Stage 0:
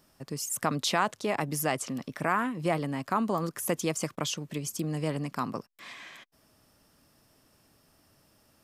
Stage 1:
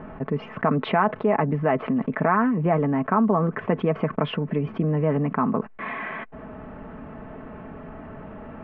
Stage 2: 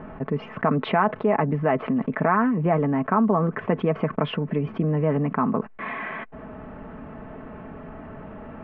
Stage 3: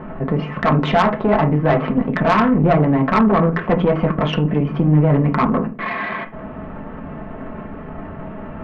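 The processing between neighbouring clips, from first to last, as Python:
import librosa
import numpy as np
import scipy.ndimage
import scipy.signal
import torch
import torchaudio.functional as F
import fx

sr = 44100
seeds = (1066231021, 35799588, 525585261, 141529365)

y1 = scipy.signal.sosfilt(scipy.signal.bessel(8, 1300.0, 'lowpass', norm='mag', fs=sr, output='sos'), x)
y1 = y1 + 0.51 * np.pad(y1, (int(4.6 * sr / 1000.0), 0))[:len(y1)]
y1 = fx.env_flatten(y1, sr, amount_pct=50)
y1 = F.gain(torch.from_numpy(y1), 5.5).numpy()
y2 = y1
y3 = fx.room_shoebox(y2, sr, seeds[0], volume_m3=130.0, walls='furnished', distance_m=0.92)
y3 = fx.tube_stage(y3, sr, drive_db=16.0, bias=0.6)
y3 = F.gain(torch.from_numpy(y3), 8.5).numpy()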